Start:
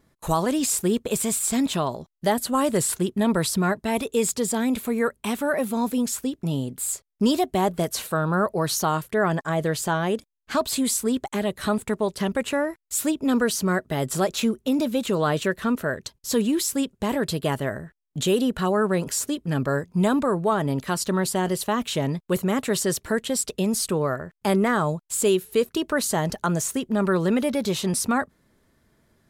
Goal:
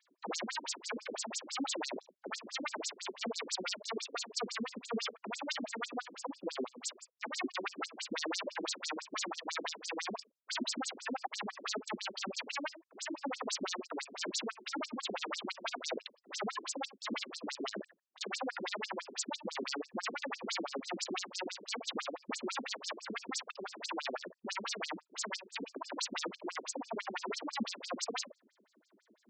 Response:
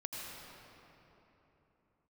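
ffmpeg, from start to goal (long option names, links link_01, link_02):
-filter_complex "[0:a]asettb=1/sr,asplit=3[link_01][link_02][link_03];[link_01]atrim=end=3.264[link_04];[link_02]atrim=start=3.26:end=5.13,asetpts=PTS-STARTPTS,afade=type=in:duration=0.004:curve=qsin,afade=type=out:start_time=1.866:duration=0.004:curve=qsin,lowshelf=frequency=310:gain=-12[link_05];[link_03]atrim=start=5.126[link_06];[link_04][link_05]acrossfade=duration=0.004:curve1=hsin:curve2=qsin[link_07];[link_07][link_06]acrossfade=duration=0.004:curve1=qsin:curve2=hsin,aeval=exprs='0.0398*(abs(mod(val(0)/0.0398+3,4)-2)-1)':channel_layout=same[link_08];[1:a]atrim=start_sample=2205,atrim=end_sample=3528[link_09];[link_08][link_09]afir=irnorm=-1:irlink=0,afftfilt=real='re*between(b*sr/1024,260*pow(6100/260,0.5+0.5*sin(2*PI*6*pts/sr))/1.41,260*pow(6100/260,0.5+0.5*sin(2*PI*6*pts/sr))*1.41)':imag='im*between(b*sr/1024,260*pow(6100/260,0.5+0.5*sin(2*PI*6*pts/sr))/1.41,260*pow(6100/260,0.5+0.5*sin(2*PI*6*pts/sr))*1.41)':win_size=1024:overlap=0.75,volume=8dB"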